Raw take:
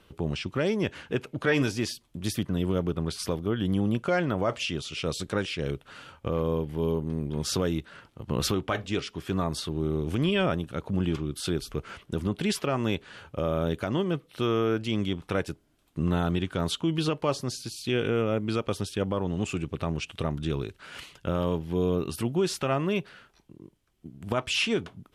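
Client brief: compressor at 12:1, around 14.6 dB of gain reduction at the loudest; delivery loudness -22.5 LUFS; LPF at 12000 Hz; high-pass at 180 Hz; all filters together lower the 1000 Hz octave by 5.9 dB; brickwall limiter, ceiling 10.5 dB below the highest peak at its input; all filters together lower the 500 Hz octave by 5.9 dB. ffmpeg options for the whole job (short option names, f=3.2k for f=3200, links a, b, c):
-af "highpass=180,lowpass=12k,equalizer=f=500:t=o:g=-6,equalizer=f=1k:t=o:g=-6.5,acompressor=threshold=-40dB:ratio=12,volume=25dB,alimiter=limit=-11.5dB:level=0:latency=1"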